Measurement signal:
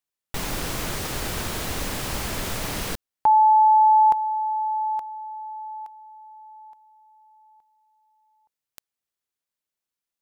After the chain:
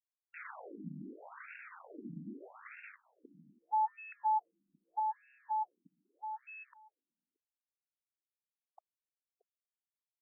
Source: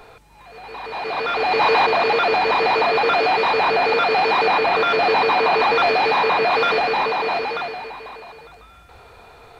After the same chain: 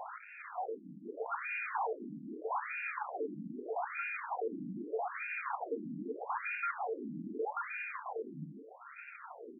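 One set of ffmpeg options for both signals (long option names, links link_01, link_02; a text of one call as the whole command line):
ffmpeg -i in.wav -af "asubboost=boost=11:cutoff=190,areverse,acompressor=threshold=-31dB:ratio=8:attack=0.11:release=89:knee=1:detection=rms,areverse,acrusher=bits=7:mix=0:aa=0.000001,asoftclip=type=tanh:threshold=-30.5dB,aecho=1:1:628:0.126,afftfilt=real='re*between(b*sr/1024,220*pow(2000/220,0.5+0.5*sin(2*PI*0.8*pts/sr))/1.41,220*pow(2000/220,0.5+0.5*sin(2*PI*0.8*pts/sr))*1.41)':imag='im*between(b*sr/1024,220*pow(2000/220,0.5+0.5*sin(2*PI*0.8*pts/sr))/1.41,220*pow(2000/220,0.5+0.5*sin(2*PI*0.8*pts/sr))*1.41)':win_size=1024:overlap=0.75,volume=6dB" out.wav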